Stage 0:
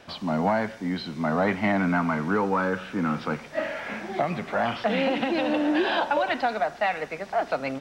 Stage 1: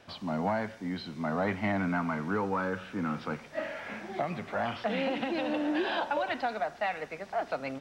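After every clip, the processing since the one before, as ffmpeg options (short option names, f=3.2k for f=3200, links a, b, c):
-af "equalizer=f=100:w=7.5:g=8.5,volume=-6.5dB"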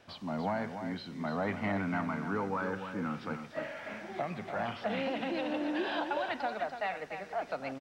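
-af "aecho=1:1:292:0.376,volume=-3.5dB"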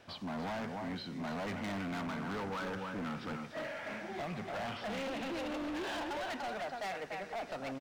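-af "asoftclip=type=hard:threshold=-37.5dB,volume=1dB"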